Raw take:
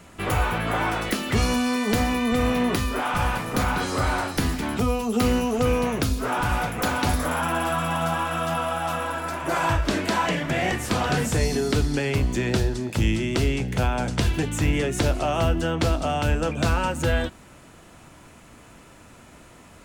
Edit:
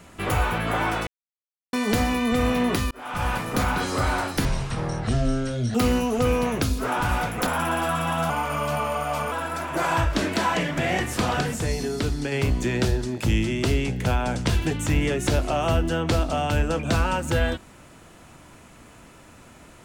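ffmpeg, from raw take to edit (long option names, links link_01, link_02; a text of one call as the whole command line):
ffmpeg -i in.wav -filter_complex "[0:a]asplit=11[link_01][link_02][link_03][link_04][link_05][link_06][link_07][link_08][link_09][link_10][link_11];[link_01]atrim=end=1.07,asetpts=PTS-STARTPTS,afade=type=out:start_time=1.066:duration=0.004:curve=hsin[link_12];[link_02]atrim=start=1.07:end=1.73,asetpts=PTS-STARTPTS,volume=0[link_13];[link_03]atrim=start=1.73:end=2.91,asetpts=PTS-STARTPTS,afade=type=in:duration=0.004:curve=hsin,afade=type=out:start_time=1.176:duration=0.004:curve=hsin[link_14];[link_04]atrim=start=2.91:end=4.454,asetpts=PTS-STARTPTS,afade=type=in:duration=0.42[link_15];[link_05]atrim=start=4.45:end=5.15,asetpts=PTS-STARTPTS,asetrate=23814,aresample=44100[link_16];[link_06]atrim=start=5.146:end=6.872[link_17];[link_07]atrim=start=7.298:end=8.134[link_18];[link_08]atrim=start=8.13:end=9.04,asetpts=PTS-STARTPTS,asetrate=39249,aresample=44100,atrim=end_sample=45091,asetpts=PTS-STARTPTS[link_19];[link_09]atrim=start=9.036:end=11.132[link_20];[link_10]atrim=start=11.128:end=12.042,asetpts=PTS-STARTPTS,volume=-3.5dB[link_21];[link_11]atrim=start=12.038[link_22];[link_12][link_13][link_14][link_15]concat=n=4:v=0:a=1[link_23];[link_23][link_16]acrossfade=duration=0.004:curve1=hsin:curve2=hsin[link_24];[link_24][link_17]acrossfade=duration=0.004:curve1=hsin:curve2=hsin[link_25];[link_25][link_18]acrossfade=duration=0.004:curve1=hsin:curve2=hsin[link_26];[link_26][link_19]acrossfade=duration=0.004:curve1=hsin:curve2=hsin[link_27];[link_27][link_20]acrossfade=duration=0.004:curve1=hsin:curve2=hsin[link_28];[link_28][link_21]acrossfade=duration=0.004:curve1=hsin:curve2=hsin[link_29];[link_29][link_22]acrossfade=duration=0.004:curve1=hsin:curve2=hsin" out.wav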